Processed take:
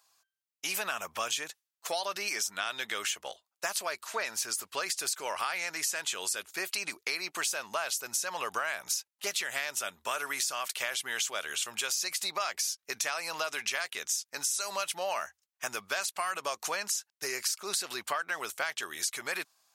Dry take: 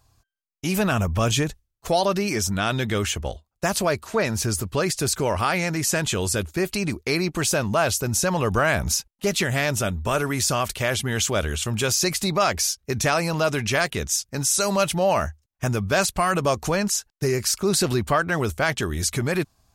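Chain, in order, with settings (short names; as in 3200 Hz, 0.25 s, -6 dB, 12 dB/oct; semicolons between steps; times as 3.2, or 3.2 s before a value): Bessel high-pass 1200 Hz, order 2; compressor, threshold -29 dBFS, peak gain reduction 10.5 dB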